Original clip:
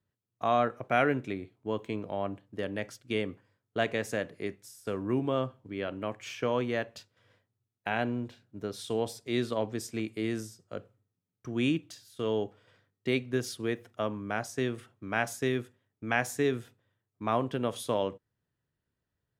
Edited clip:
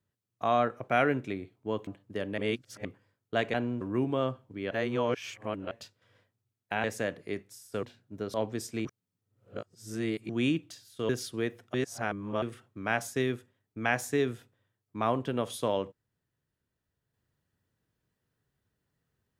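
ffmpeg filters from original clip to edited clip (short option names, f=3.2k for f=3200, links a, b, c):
-filter_complex "[0:a]asplit=16[a][b][c][d][e][f][g][h][i][j][k][l][m][n][o][p];[a]atrim=end=1.872[q];[b]atrim=start=2.298:end=2.812[r];[c]atrim=start=2.808:end=3.282,asetpts=PTS-STARTPTS,areverse[s];[d]atrim=start=3.278:end=3.972[t];[e]atrim=start=7.988:end=8.262[u];[f]atrim=start=4.958:end=5.862[v];[g]atrim=start=5.858:end=6.862,asetpts=PTS-STARTPTS,areverse[w];[h]atrim=start=6.858:end=7.992[x];[i]atrim=start=3.968:end=4.962[y];[j]atrim=start=8.258:end=8.772[z];[k]atrim=start=9.538:end=10.052[aa];[l]atrim=start=10.048:end=11.492,asetpts=PTS-STARTPTS,areverse[ab];[m]atrim=start=11.488:end=12.292[ac];[n]atrim=start=13.348:end=14.002[ad];[o]atrim=start=13.998:end=14.682,asetpts=PTS-STARTPTS,areverse[ae];[p]atrim=start=14.678[af];[q][r]acrossfade=d=0.004:c1=hsin:c2=hsin[ag];[ag][s]acrossfade=d=0.004:c1=hsin:c2=hsin[ah];[ah][t]acrossfade=d=0.004:c1=hsin:c2=hsin[ai];[ai][u]acrossfade=d=0.004:c1=hsin:c2=hsin[aj];[aj][v]acrossfade=d=0.004:c1=hsin:c2=hsin[ak];[ak][w]acrossfade=d=0.004:c1=hsin:c2=hsin[al];[al][x]acrossfade=d=0.004:c1=hsin:c2=hsin[am];[am][y]acrossfade=d=0.004:c1=hsin:c2=hsin[an];[an][z]acrossfade=d=0.004:c1=hsin:c2=hsin[ao];[ao][aa]acrossfade=d=0.004:c1=hsin:c2=hsin[ap];[ap][ab]acrossfade=d=0.004:c1=hsin:c2=hsin[aq];[aq][ac]acrossfade=d=0.004:c1=hsin:c2=hsin[ar];[ar][ad]acrossfade=d=0.004:c1=hsin:c2=hsin[as];[as][ae]acrossfade=d=0.004:c1=hsin:c2=hsin[at];[at][af]acrossfade=d=0.004:c1=hsin:c2=hsin"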